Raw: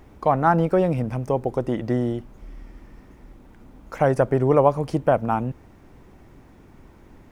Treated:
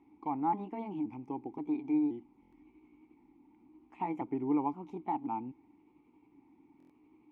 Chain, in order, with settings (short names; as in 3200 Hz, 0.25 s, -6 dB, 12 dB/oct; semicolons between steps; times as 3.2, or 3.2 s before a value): trilling pitch shifter +3.5 st, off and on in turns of 0.526 s; vowel filter u; stuck buffer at 2.41/6.78, samples 1024, times 4; gain -2.5 dB